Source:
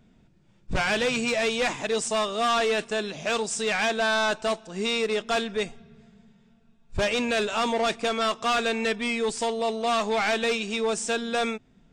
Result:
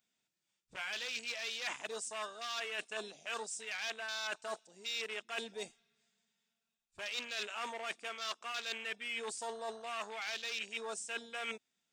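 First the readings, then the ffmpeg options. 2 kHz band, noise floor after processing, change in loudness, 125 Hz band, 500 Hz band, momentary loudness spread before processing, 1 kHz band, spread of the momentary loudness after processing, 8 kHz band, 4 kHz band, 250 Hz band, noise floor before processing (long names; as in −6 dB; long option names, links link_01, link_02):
−12.5 dB, below −85 dBFS, −14.5 dB, below −25 dB, −19.5 dB, 5 LU, −16.5 dB, 5 LU, −11.0 dB, −11.0 dB, −26.0 dB, −60 dBFS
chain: -af "afwtdn=0.0251,aeval=exprs='0.141*(cos(1*acos(clip(val(0)/0.141,-1,1)))-cos(1*PI/2))+0.00158*(cos(6*acos(clip(val(0)/0.141,-1,1)))-cos(6*PI/2))':channel_layout=same,aderivative,areverse,acompressor=threshold=-50dB:ratio=6,areverse,volume=12dB"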